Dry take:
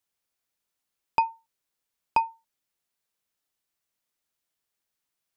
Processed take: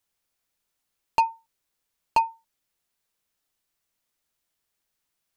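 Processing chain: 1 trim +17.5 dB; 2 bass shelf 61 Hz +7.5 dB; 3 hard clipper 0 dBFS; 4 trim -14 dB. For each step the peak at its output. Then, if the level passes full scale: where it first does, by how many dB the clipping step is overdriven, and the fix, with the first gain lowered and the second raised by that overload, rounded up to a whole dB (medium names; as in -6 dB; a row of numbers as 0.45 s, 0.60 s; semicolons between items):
+7.0 dBFS, +7.5 dBFS, 0.0 dBFS, -14.0 dBFS; step 1, 7.5 dB; step 1 +9.5 dB, step 4 -6 dB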